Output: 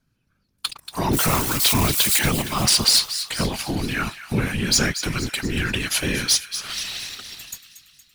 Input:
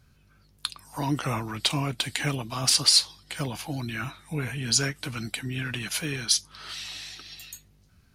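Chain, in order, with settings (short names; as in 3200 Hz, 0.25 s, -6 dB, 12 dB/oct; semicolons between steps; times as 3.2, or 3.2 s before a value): 1.13–2.19 switching spikes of -14 dBFS; sample leveller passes 3; thin delay 0.233 s, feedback 53%, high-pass 1500 Hz, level -11 dB; whisperiser; gain -3.5 dB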